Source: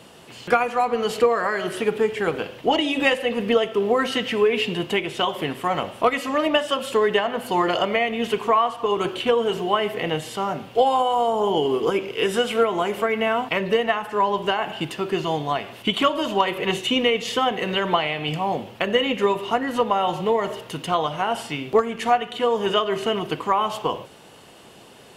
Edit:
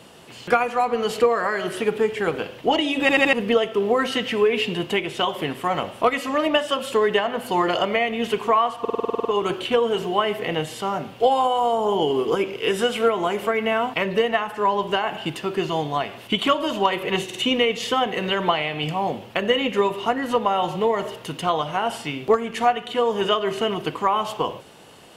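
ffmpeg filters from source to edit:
-filter_complex "[0:a]asplit=16[a][b][c][d][e][f][g][h][i][j][k][l][m][n][o][p];[a]atrim=end=3.092[q];[b]atrim=start=3.008:end=3.092[r];[c]atrim=start=3.008:end=3.092[s];[d]atrim=start=3.008:end=3.092[t];[e]atrim=start=3.328:end=8.852[u];[f]atrim=start=8.798:end=8.852[v];[g]atrim=start=8.798:end=8.852[w];[h]atrim=start=8.798:end=8.852[x];[i]atrim=start=8.798:end=8.852[y];[j]atrim=start=8.798:end=8.852[z];[k]atrim=start=8.798:end=8.852[aa];[l]atrim=start=8.798:end=8.852[ab];[m]atrim=start=8.798:end=8.852[ac];[n]atrim=start=8.798:end=16.852[ad];[o]atrim=start=16.798:end=16.852[ae];[p]atrim=start=16.798[af];[q][r]acrossfade=d=0.004:c1=hsin:c2=hsin[ag];[ag][s]acrossfade=d=0.004:c1=hsin:c2=hsin[ah];[ah][t]acrossfade=d=0.004:c1=hsin:c2=hsin[ai];[ai][u]acrossfade=d=0.004:c1=hsin:c2=hsin[aj];[aj][v]acrossfade=d=0.004:c1=hsin:c2=hsin[ak];[ak][w]acrossfade=d=0.004:c1=hsin:c2=hsin[al];[al][x]acrossfade=d=0.004:c1=hsin:c2=hsin[am];[am][y]acrossfade=d=0.004:c1=hsin:c2=hsin[an];[an][z]acrossfade=d=0.004:c1=hsin:c2=hsin[ao];[ao][aa]acrossfade=d=0.004:c1=hsin:c2=hsin[ap];[ap][ab]acrossfade=d=0.004:c1=hsin:c2=hsin[aq];[aq][ac]acrossfade=d=0.004:c1=hsin:c2=hsin[ar];[ar][ad]acrossfade=d=0.004:c1=hsin:c2=hsin[as];[as][ae]acrossfade=d=0.004:c1=hsin:c2=hsin[at];[at][af]acrossfade=d=0.004:c1=hsin:c2=hsin"

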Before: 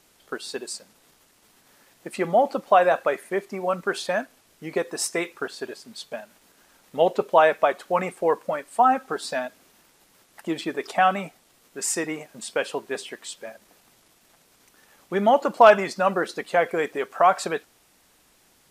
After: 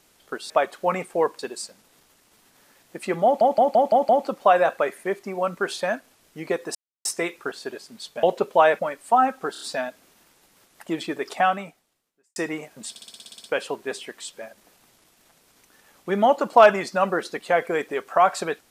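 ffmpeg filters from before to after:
-filter_complex "[0:a]asplit=24[a][b][c][d][e][f][g][h][i][j][k][l][m][n][o][p][q][r][s][t][u][v][w][x];[a]atrim=end=0.502[y];[b]atrim=start=7.568:end=8.462[z];[c]atrim=start=0.498:end=2.522[aa];[d]atrim=start=2.348:end=2.522[ab];[e]atrim=start=2.348:end=2.522[ac];[f]atrim=start=2.348:end=2.522[ad];[g]atrim=start=2.348:end=2.522[ae];[h]atrim=start=2.348:end=5.01,asetpts=PTS-STARTPTS,afade=t=out:st=2.658:d=0.004:c=hsin,apad=pad_dur=0.3[af];[i]atrim=start=5.01:end=6.192,asetpts=PTS-STARTPTS,afade=t=in:d=0.004:c=hsin[ag];[j]atrim=start=7.008:end=7.572[ah];[k]atrim=start=8.458:end=9.222[ai];[l]atrim=start=9.188:end=9.222[aj];[m]atrim=start=9.188:end=9.222[ak];[n]atrim=start=9.188:end=11.94,asetpts=PTS-STARTPTS,afade=t=out:st=1.782:d=0.97:c=qua[al];[o]atrim=start=11.94:end=12.542,asetpts=PTS-STARTPTS,afade=t=in:d=0.004:c=hsin[am];[p]atrim=start=12.478:end=12.542[an];[q]atrim=start=12.478:end=12.542[ao];[r]atrim=start=12.478:end=12.542[ap];[s]atrim=start=12.478:end=12.542[aq];[t]atrim=start=12.478:end=12.542[ar];[u]atrim=start=12.478:end=12.542[as];[v]atrim=start=12.478:end=12.542[at];[w]atrim=start=12.478:end=12.542[au];[x]atrim=start=12.478[av];[y][z]acrossfade=d=0.004:c1=hsin:c2=hsin[aw];[aw][aa]acrossfade=d=0.004:c1=hsin:c2=hsin[ax];[ax][ab]acrossfade=d=0.004:c1=hsin:c2=hsin[ay];[ay][ac]acrossfade=d=0.004:c1=hsin:c2=hsin[az];[az][ad]acrossfade=d=0.004:c1=hsin:c2=hsin[ba];[ba][ae]acrossfade=d=0.004:c1=hsin:c2=hsin[bb];[af][ag]concat=n=2:v=0:a=1[bc];[bb][bc]acrossfade=d=0.004:c1=hsin:c2=hsin[bd];[bd][ah]acrossfade=d=0.004:c1=hsin:c2=hsin[be];[be][ai]acrossfade=d=0.004:c1=hsin:c2=hsin[bf];[bf][aj]acrossfade=d=0.004:c1=hsin:c2=hsin[bg];[bg][ak]acrossfade=d=0.004:c1=hsin:c2=hsin[bh];[al][am]concat=n=2:v=0:a=1[bi];[bh][bi]acrossfade=d=0.004:c1=hsin:c2=hsin[bj];[bj][an]acrossfade=d=0.004:c1=hsin:c2=hsin[bk];[bk][ao]acrossfade=d=0.004:c1=hsin:c2=hsin[bl];[bl][ap]acrossfade=d=0.004:c1=hsin:c2=hsin[bm];[bm][aq]acrossfade=d=0.004:c1=hsin:c2=hsin[bn];[bn][ar]acrossfade=d=0.004:c1=hsin:c2=hsin[bo];[bo][as]acrossfade=d=0.004:c1=hsin:c2=hsin[bp];[bp][at]acrossfade=d=0.004:c1=hsin:c2=hsin[bq];[bq][au]acrossfade=d=0.004:c1=hsin:c2=hsin[br];[br][av]acrossfade=d=0.004:c1=hsin:c2=hsin"

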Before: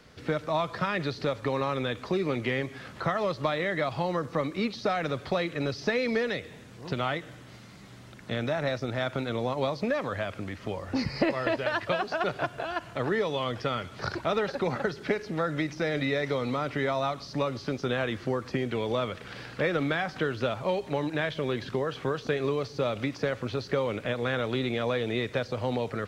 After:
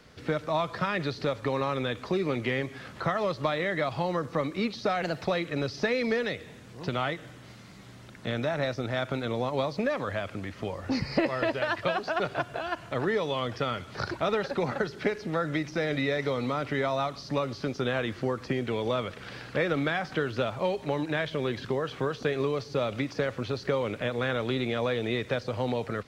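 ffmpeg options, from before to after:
-filter_complex "[0:a]asplit=3[a][b][c];[a]atrim=end=5.024[d];[b]atrim=start=5.02:end=5.29,asetpts=PTS-STARTPTS,asetrate=52038,aresample=44100[e];[c]atrim=start=5.286[f];[d][e]acrossfade=d=0.004:c1=hsin:c2=hsin[g];[g][f]acrossfade=d=0.004:c1=hsin:c2=hsin"

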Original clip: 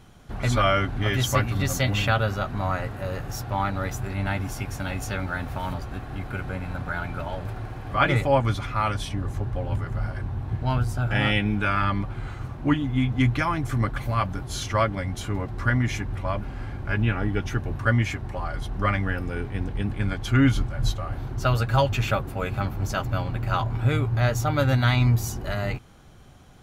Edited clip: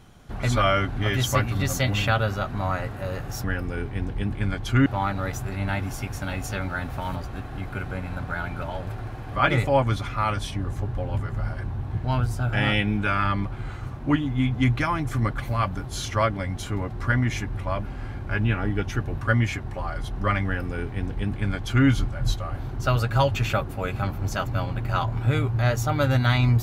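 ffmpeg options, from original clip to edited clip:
-filter_complex "[0:a]asplit=3[a][b][c];[a]atrim=end=3.442[d];[b]atrim=start=19.028:end=20.452[e];[c]atrim=start=3.438[f];[d][e]acrossfade=d=0.004:c1=hsin:c2=hsin[g];[g][f]acrossfade=d=0.004:c1=hsin:c2=hsin"

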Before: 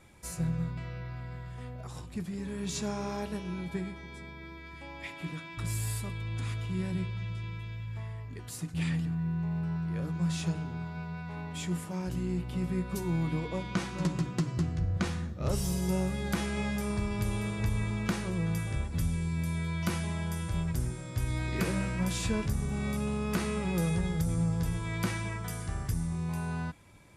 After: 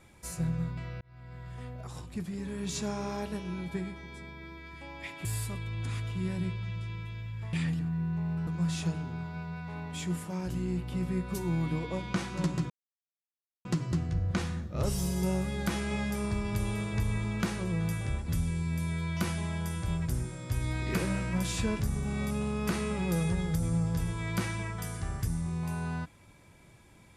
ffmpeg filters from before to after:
-filter_complex "[0:a]asplit=6[a][b][c][d][e][f];[a]atrim=end=1.01,asetpts=PTS-STARTPTS,afade=t=out:st=1.006:d=0.004:c=hsin[g];[b]atrim=start=1.01:end=5.252,asetpts=PTS-STARTPTS,afade=t=in:d=0.53[h];[c]atrim=start=5.788:end=8.072[i];[d]atrim=start=8.788:end=9.732[j];[e]atrim=start=10.078:end=14.31,asetpts=PTS-STARTPTS,afade=t=out:st=4.228:d=0.004:c=hsin,apad=pad_dur=0.95[k];[f]atrim=start=14.31,asetpts=PTS-STARTPTS,afade=t=in:d=0.004:c=hsin[l];[g][h]concat=n=2:v=0:a=1[m];[m][i]acrossfade=d=0.004:c1=hsin:c2=hsin[n];[n][j]acrossfade=d=0.004:c1=hsin:c2=hsin[o];[k][l]concat=n=2:v=0:a=1[p];[o][p]acrossfade=d=0.004:c1=hsin:c2=hsin"

